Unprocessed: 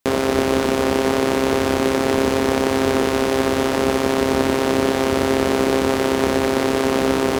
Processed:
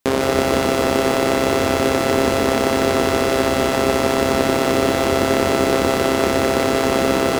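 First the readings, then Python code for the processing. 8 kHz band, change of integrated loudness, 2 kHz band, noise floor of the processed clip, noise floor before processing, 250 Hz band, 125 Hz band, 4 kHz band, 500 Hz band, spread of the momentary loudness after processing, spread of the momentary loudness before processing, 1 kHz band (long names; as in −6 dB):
+2.5 dB, +1.0 dB, +2.0 dB, −20 dBFS, −21 dBFS, −0.5 dB, +2.0 dB, +2.5 dB, +1.0 dB, 1 LU, 1 LU, +2.5 dB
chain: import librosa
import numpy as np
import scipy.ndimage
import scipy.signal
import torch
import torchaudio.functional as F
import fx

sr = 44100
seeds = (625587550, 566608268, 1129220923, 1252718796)

y = fx.echo_crushed(x, sr, ms=156, feedback_pct=55, bits=6, wet_db=-4.5)
y = y * 10.0 ** (1.0 / 20.0)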